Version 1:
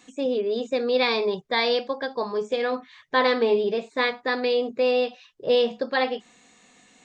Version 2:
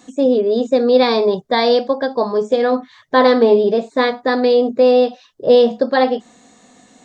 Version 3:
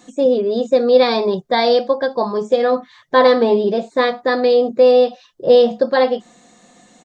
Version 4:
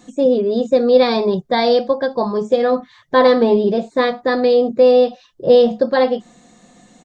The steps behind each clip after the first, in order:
graphic EQ with 15 bands 100 Hz +5 dB, 250 Hz +6 dB, 630 Hz +6 dB, 2,500 Hz −9 dB; level +6.5 dB
comb filter 5.7 ms, depth 39%; level −1 dB
low-shelf EQ 180 Hz +11.5 dB; level −1.5 dB

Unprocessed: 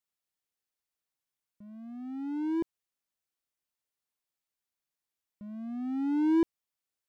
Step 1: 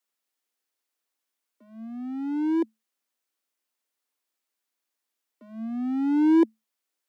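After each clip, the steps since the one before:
Chebyshev high-pass filter 220 Hz, order 10
level +6.5 dB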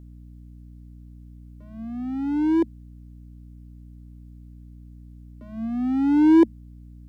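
mains hum 60 Hz, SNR 18 dB
level +4 dB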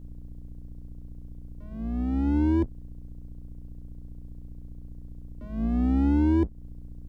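sub-octave generator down 2 octaves, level +1 dB
downward compressor 6 to 1, threshold −19 dBFS, peak gain reduction 10.5 dB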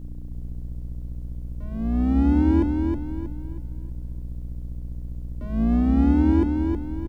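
brickwall limiter −20 dBFS, peak gain reduction 5 dB
on a send: repeating echo 318 ms, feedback 38%, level −4.5 dB
on the sum: level +6.5 dB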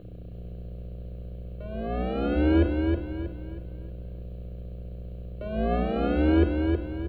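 phaser with its sweep stopped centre 1,300 Hz, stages 8
convolution reverb RT60 0.85 s, pre-delay 3 ms, DRR 13.5 dB

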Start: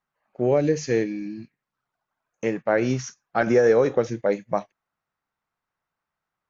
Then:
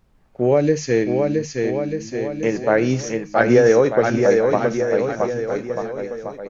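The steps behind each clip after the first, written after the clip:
background noise brown −60 dBFS
on a send: bouncing-ball delay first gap 670 ms, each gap 0.85×, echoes 5
on the sum: level +4 dB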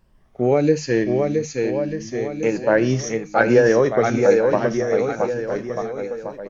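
rippled gain that drifts along the octave scale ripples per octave 1.3, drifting +1.1 Hz, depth 7 dB
level −1 dB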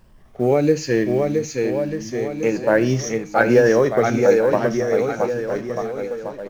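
mu-law and A-law mismatch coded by mu
on a send at −22.5 dB: convolution reverb RT60 0.50 s, pre-delay 8 ms

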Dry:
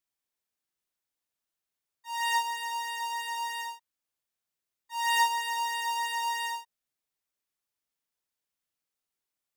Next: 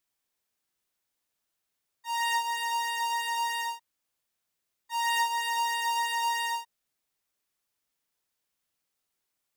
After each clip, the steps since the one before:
downward compressor 2.5 to 1, threshold −33 dBFS, peak gain reduction 9 dB
level +5.5 dB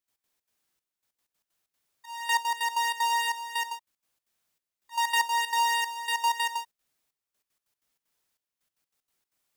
gate pattern ".x.xx.xxxx...x.x" 190 BPM −12 dB
level +4 dB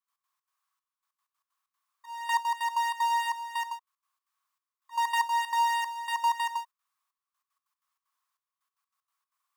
high-pass with resonance 1,100 Hz, resonance Q 11
level −7.5 dB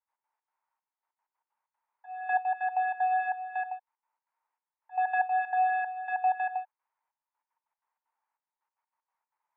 single-sideband voice off tune −190 Hz 510–2,500 Hz

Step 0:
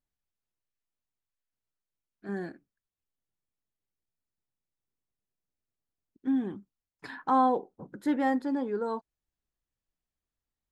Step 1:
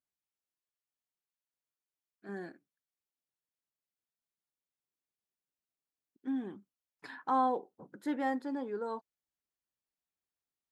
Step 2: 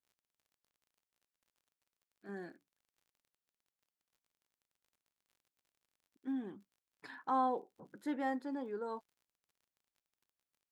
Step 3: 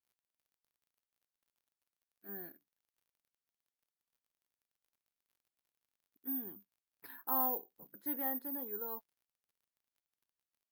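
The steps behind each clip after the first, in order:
high-pass filter 260 Hz 6 dB per octave; level −4.5 dB
surface crackle 44 per second −57 dBFS; level −3.5 dB
bad sample-rate conversion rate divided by 3×, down filtered, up zero stuff; level −5.5 dB

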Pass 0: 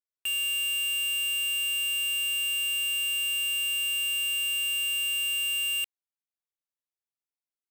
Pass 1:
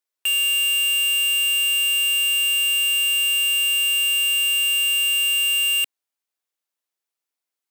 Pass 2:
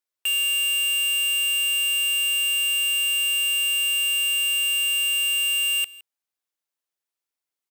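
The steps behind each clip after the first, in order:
high-pass filter 300 Hz 12 dB per octave; level +8.5 dB
single-tap delay 165 ms −21 dB; level −2.5 dB

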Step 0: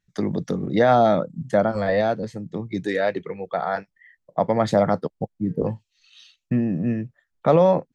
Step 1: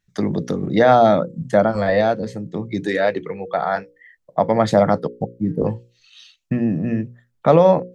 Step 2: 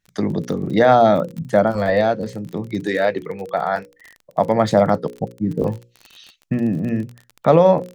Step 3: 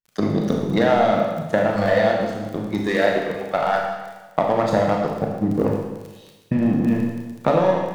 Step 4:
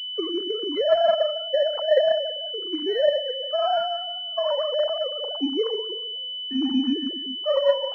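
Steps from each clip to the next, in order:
mains-hum notches 60/120/180/240/300/360/420/480/540 Hz; level +4 dB
surface crackle 32 per second −28 dBFS
power curve on the samples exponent 1.4; downward compressor 10 to 1, threshold −21 dBFS, peak gain reduction 12.5 dB; four-comb reverb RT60 1.2 s, combs from 26 ms, DRR 0 dB; level +5.5 dB
three sine waves on the formant tracks; two-band tremolo in antiphase 5.9 Hz, depth 70%, crossover 550 Hz; switching amplifier with a slow clock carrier 3,000 Hz

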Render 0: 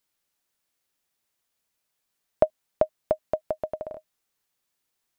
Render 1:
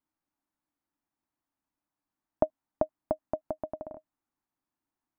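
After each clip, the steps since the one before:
drawn EQ curve 190 Hz 0 dB, 300 Hz +9 dB, 440 Hz −9 dB, 890 Hz +2 dB, 3,300 Hz −16 dB
level −2.5 dB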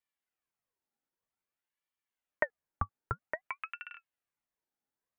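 ring modulator whose carrier an LFO sweeps 1,300 Hz, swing 60%, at 0.52 Hz
level −2 dB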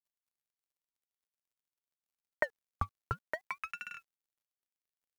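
mu-law and A-law mismatch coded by mu
level −1.5 dB

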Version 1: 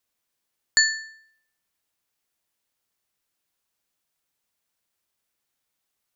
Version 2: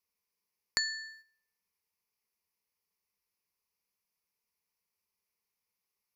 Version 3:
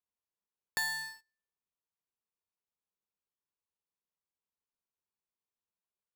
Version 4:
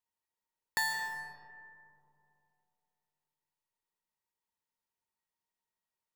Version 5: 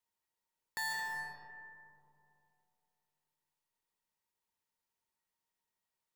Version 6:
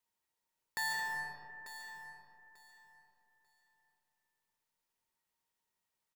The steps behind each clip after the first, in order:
noise gate −51 dBFS, range −8 dB; EQ curve with evenly spaced ripples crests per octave 0.84, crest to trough 11 dB; downward compressor 4 to 1, threshold −29 dBFS, peak gain reduction 12.5 dB; level −1 dB
running median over 9 samples; parametric band 2,100 Hz −11.5 dB 0.35 octaves; leveller curve on the samples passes 3; level −2 dB
hollow resonant body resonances 920/1,900 Hz, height 15 dB, ringing for 80 ms; convolution reverb RT60 2.7 s, pre-delay 100 ms, DRR 5.5 dB
brickwall limiter −33 dBFS, peak gain reduction 11 dB; level +1.5 dB
repeating echo 892 ms, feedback 21%, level −12 dB; level +1.5 dB

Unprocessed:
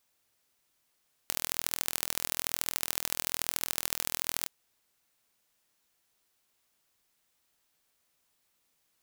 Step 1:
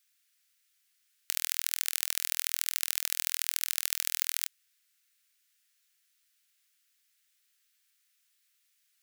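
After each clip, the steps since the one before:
inverse Chebyshev high-pass filter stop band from 760 Hz, stop band 40 dB
level +2 dB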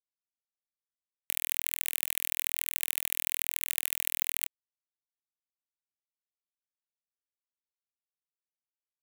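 bit reduction 7 bits
phaser with its sweep stopped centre 1,400 Hz, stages 6
level +2 dB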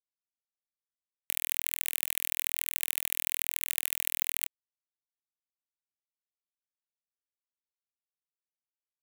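no processing that can be heard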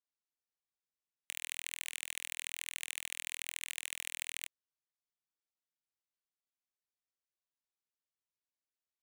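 Savitzky-Golay smoothing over 9 samples
level −3 dB

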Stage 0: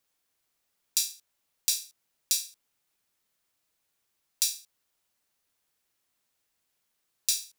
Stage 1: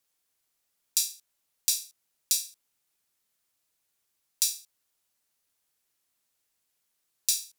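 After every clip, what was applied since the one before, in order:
parametric band 11,000 Hz +5 dB 2.1 octaves
level −3 dB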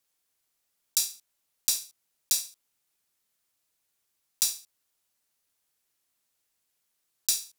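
one scale factor per block 5 bits

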